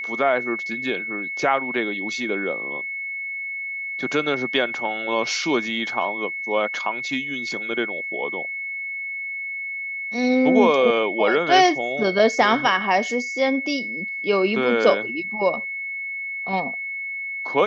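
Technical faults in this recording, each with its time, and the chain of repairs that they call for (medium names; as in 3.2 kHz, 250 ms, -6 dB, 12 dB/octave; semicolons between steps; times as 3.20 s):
whine 2.2 kHz -27 dBFS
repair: band-stop 2.2 kHz, Q 30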